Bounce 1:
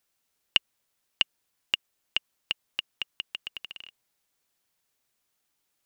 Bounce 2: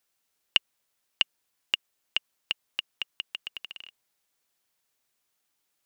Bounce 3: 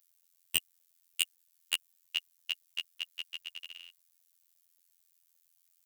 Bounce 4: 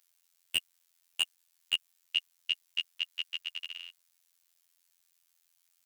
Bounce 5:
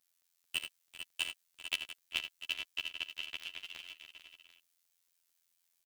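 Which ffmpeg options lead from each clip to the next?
-af "lowshelf=f=250:g=-4.5"
-af "crystalizer=i=7.5:c=0,aeval=exprs='(mod(0.75*val(0)+1,2)-1)/0.75':c=same,afftfilt=real='hypot(re,im)*cos(PI*b)':imag='0':win_size=2048:overlap=0.75,volume=-11.5dB"
-filter_complex "[0:a]asplit=2[a][b];[b]highpass=f=720:p=1,volume=19dB,asoftclip=type=tanh:threshold=-1dB[c];[a][c]amix=inputs=2:normalize=0,lowpass=f=4.1k:p=1,volume=-6dB,volume=-6.5dB"
-filter_complex "[0:a]asplit=2[a][b];[b]aecho=0:1:42|80|97|393|447|695:0.119|0.355|0.112|0.119|0.335|0.237[c];[a][c]amix=inputs=2:normalize=0,aeval=exprs='val(0)*sgn(sin(2*PI*170*n/s))':c=same,volume=-6dB"

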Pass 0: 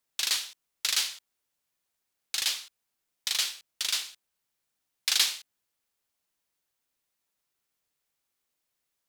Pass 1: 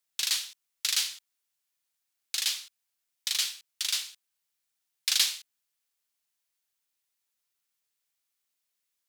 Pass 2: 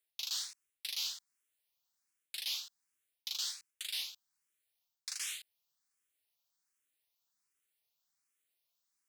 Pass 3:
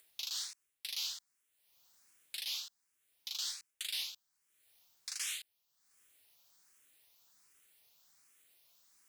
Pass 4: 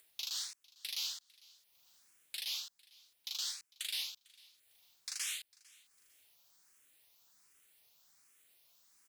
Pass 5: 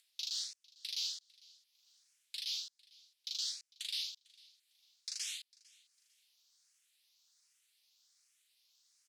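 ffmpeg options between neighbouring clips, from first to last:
-af "tiltshelf=f=1.2k:g=-5.5,volume=-5dB"
-filter_complex "[0:a]areverse,acompressor=threshold=-34dB:ratio=8,areverse,asplit=2[a][b];[b]afreqshift=1.3[c];[a][c]amix=inputs=2:normalize=1,volume=1dB"
-af "acompressor=mode=upward:threshold=-59dB:ratio=2.5,alimiter=level_in=6.5dB:limit=-24dB:level=0:latency=1:release=160,volume=-6.5dB,volume=3dB"
-af "aecho=1:1:451|902:0.0631|0.0189"
-af "bandpass=f=4.7k:t=q:w=1.4:csg=0,volume=2dB"

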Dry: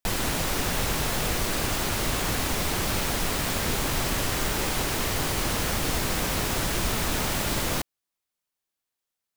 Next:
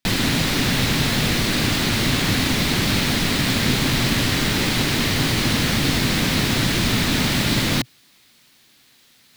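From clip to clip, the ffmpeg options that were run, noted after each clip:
-af "equalizer=f=125:t=o:w=1:g=10,equalizer=f=250:t=o:w=1:g=11,equalizer=f=2k:t=o:w=1:g=7,equalizer=f=4k:t=o:w=1:g=10,areverse,acompressor=mode=upward:threshold=-33dB:ratio=2.5,areverse"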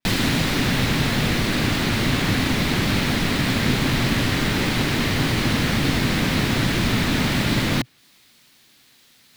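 -af "adynamicequalizer=threshold=0.0126:dfrequency=3100:dqfactor=0.7:tfrequency=3100:tqfactor=0.7:attack=5:release=100:ratio=0.375:range=3:mode=cutabove:tftype=highshelf"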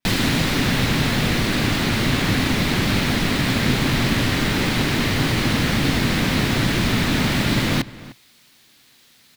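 -filter_complex "[0:a]asplit=2[a][b];[b]adelay=303.2,volume=-18dB,highshelf=f=4k:g=-6.82[c];[a][c]amix=inputs=2:normalize=0,volume=1dB"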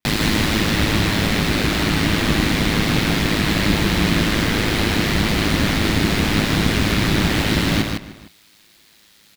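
-af "aeval=exprs='val(0)*sin(2*PI*53*n/s)':c=same,aecho=1:1:110.8|157.4:0.282|0.562,volume=3dB"

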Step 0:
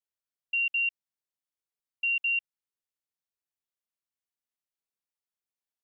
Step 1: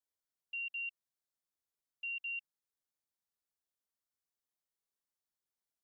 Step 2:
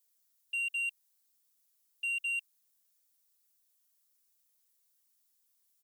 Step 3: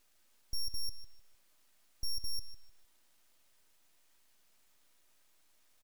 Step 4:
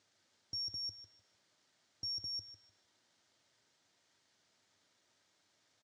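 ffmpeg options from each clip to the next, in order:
-af "equalizer=f=2.5k:t=o:w=0.63:g=-7.5,bandreject=f=2.7k:w=14,volume=-1dB"
-af "aecho=1:1:3.2:0.65,crystalizer=i=4.5:c=0,asoftclip=type=tanh:threshold=-30dB"
-filter_complex "[0:a]aeval=exprs='abs(val(0))':c=same,asplit=2[a][b];[b]adelay=151,lowpass=f=4.2k:p=1,volume=-12.5dB,asplit=2[c][d];[d]adelay=151,lowpass=f=4.2k:p=1,volume=0.31,asplit=2[e][f];[f]adelay=151,lowpass=f=4.2k:p=1,volume=0.31[g];[a][c][e][g]amix=inputs=4:normalize=0,alimiter=level_in=9dB:limit=-24dB:level=0:latency=1:release=21,volume=-9dB,volume=5dB"
-af "highpass=f=100:w=0.5412,highpass=f=100:w=1.3066,equalizer=f=100:t=q:w=4:g=7,equalizer=f=1.1k:t=q:w=4:g=-4,equalizer=f=2.6k:t=q:w=4:g=-6,lowpass=f=6.6k:w=0.5412,lowpass=f=6.6k:w=1.3066,volume=2dB"

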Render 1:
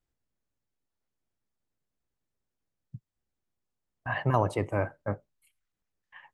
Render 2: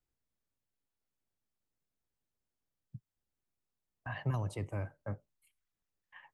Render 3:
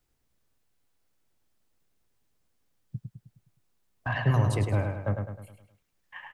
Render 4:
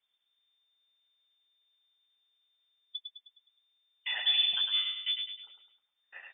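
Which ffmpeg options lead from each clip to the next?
-filter_complex "[0:a]acrossover=split=200|3000[a][b][c];[b]acompressor=threshold=-38dB:ratio=4[d];[a][d][c]amix=inputs=3:normalize=0,volume=-4.5dB"
-filter_complex "[0:a]asplit=2[a][b];[b]asoftclip=type=tanh:threshold=-35.5dB,volume=-3.5dB[c];[a][c]amix=inputs=2:normalize=0,asplit=2[d][e];[e]adelay=104,lowpass=f=5k:p=1,volume=-5dB,asplit=2[f][g];[g]adelay=104,lowpass=f=5k:p=1,volume=0.48,asplit=2[h][i];[i]adelay=104,lowpass=f=5k:p=1,volume=0.48,asplit=2[j][k];[k]adelay=104,lowpass=f=5k:p=1,volume=0.48,asplit=2[l][m];[m]adelay=104,lowpass=f=5k:p=1,volume=0.48,asplit=2[n][o];[o]adelay=104,lowpass=f=5k:p=1,volume=0.48[p];[d][f][h][j][l][n][p]amix=inputs=7:normalize=0,volume=7dB"
-af "lowpass=f=3.1k:t=q:w=0.5098,lowpass=f=3.1k:t=q:w=0.6013,lowpass=f=3.1k:t=q:w=0.9,lowpass=f=3.1k:t=q:w=2.563,afreqshift=-3600,volume=-4.5dB"

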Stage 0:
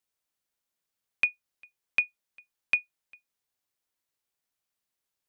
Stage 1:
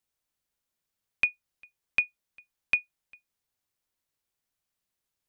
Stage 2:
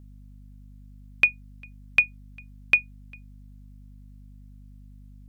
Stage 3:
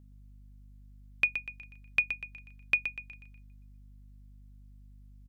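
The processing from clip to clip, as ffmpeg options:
-af "lowshelf=f=160:g=8"
-af "aeval=exprs='val(0)+0.00251*(sin(2*PI*50*n/s)+sin(2*PI*2*50*n/s)/2+sin(2*PI*3*50*n/s)/3+sin(2*PI*4*50*n/s)/4+sin(2*PI*5*50*n/s)/5)':c=same,volume=6dB"
-af "aecho=1:1:122|244|366|488|610:0.355|0.149|0.0626|0.0263|0.011,volume=-7.5dB"

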